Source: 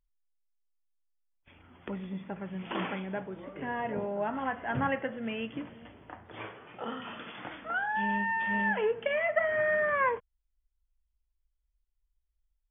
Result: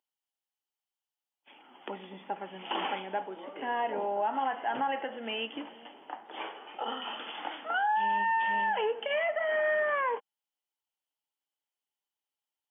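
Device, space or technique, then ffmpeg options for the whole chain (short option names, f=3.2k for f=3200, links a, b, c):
laptop speaker: -af "highpass=f=270:w=0.5412,highpass=f=270:w=1.3066,equalizer=f=830:t=o:w=0.34:g=11.5,equalizer=f=3k:t=o:w=0.22:g=11,alimiter=limit=-22dB:level=0:latency=1:release=66"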